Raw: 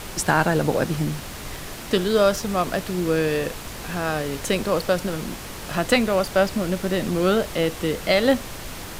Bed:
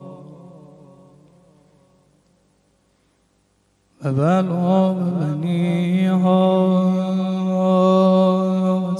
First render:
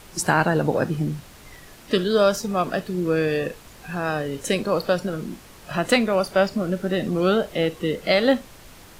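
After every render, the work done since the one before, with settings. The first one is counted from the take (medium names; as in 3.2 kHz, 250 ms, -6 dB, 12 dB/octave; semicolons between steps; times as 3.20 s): noise print and reduce 11 dB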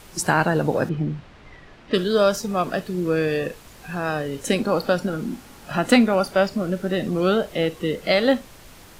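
0.89–1.94 s: low-pass 3 kHz; 4.47–6.31 s: small resonant body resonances 250/810/1400 Hz, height 8 dB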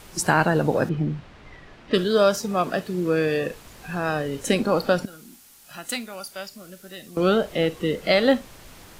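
2.06–3.50 s: high-pass 98 Hz 6 dB/octave; 5.05–7.17 s: pre-emphasis filter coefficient 0.9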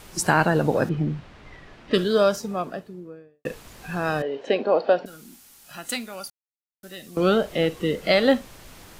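1.95–3.45 s: studio fade out; 4.22–5.06 s: cabinet simulation 390–3600 Hz, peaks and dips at 420 Hz +5 dB, 670 Hz +8 dB, 1.3 kHz -8 dB, 2.2 kHz -5 dB, 3.5 kHz -4 dB; 6.30–6.83 s: mute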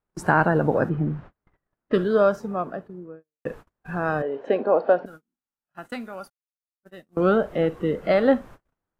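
FFT filter 200 Hz 0 dB, 1.5 kHz +1 dB, 2.2 kHz -8 dB, 4.4 kHz -16 dB; gate -40 dBFS, range -38 dB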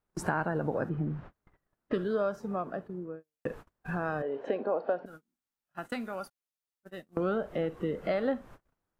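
compression 2.5:1, threshold -32 dBFS, peak gain reduction 13 dB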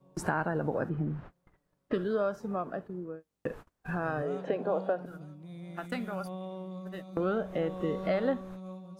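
add bed -25 dB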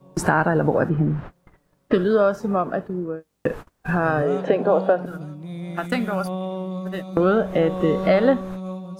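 trim +12 dB; peak limiter -3 dBFS, peak gain reduction 1 dB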